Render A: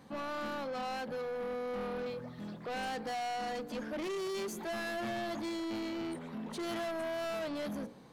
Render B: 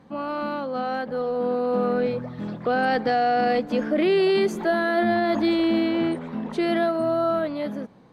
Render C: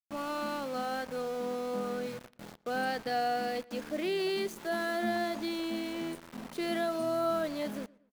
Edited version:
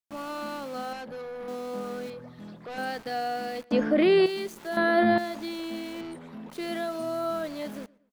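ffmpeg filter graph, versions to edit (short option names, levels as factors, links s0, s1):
-filter_complex "[0:a]asplit=3[s0][s1][s2];[1:a]asplit=2[s3][s4];[2:a]asplit=6[s5][s6][s7][s8][s9][s10];[s5]atrim=end=0.932[s11];[s0]atrim=start=0.928:end=1.482[s12];[s6]atrim=start=1.478:end=2.102[s13];[s1]atrim=start=2.098:end=2.782[s14];[s7]atrim=start=2.778:end=3.712[s15];[s3]atrim=start=3.708:end=4.262[s16];[s8]atrim=start=4.258:end=4.772[s17];[s4]atrim=start=4.768:end=5.182[s18];[s9]atrim=start=5.178:end=6.012[s19];[s2]atrim=start=6.008:end=6.502[s20];[s10]atrim=start=6.498[s21];[s11][s12]acrossfade=d=0.004:c1=hsin:c2=hsin[s22];[s22][s13]acrossfade=d=0.004:c1=hsin:c2=hsin[s23];[s23][s14]acrossfade=d=0.004:c1=hsin:c2=hsin[s24];[s24][s15]acrossfade=d=0.004:c1=hsin:c2=hsin[s25];[s25][s16]acrossfade=d=0.004:c1=hsin:c2=hsin[s26];[s26][s17]acrossfade=d=0.004:c1=hsin:c2=hsin[s27];[s27][s18]acrossfade=d=0.004:c1=hsin:c2=hsin[s28];[s28][s19]acrossfade=d=0.004:c1=hsin:c2=hsin[s29];[s29][s20]acrossfade=d=0.004:c1=hsin:c2=hsin[s30];[s30][s21]acrossfade=d=0.004:c1=hsin:c2=hsin"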